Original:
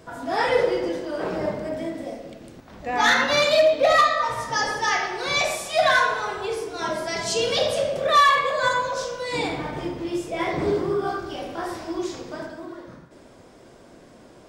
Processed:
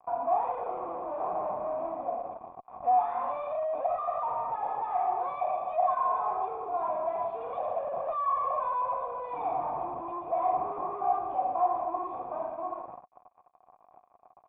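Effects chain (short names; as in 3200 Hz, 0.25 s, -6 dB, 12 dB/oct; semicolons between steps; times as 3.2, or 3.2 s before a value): fuzz box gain 36 dB, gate -43 dBFS; vocal tract filter a; gain -3.5 dB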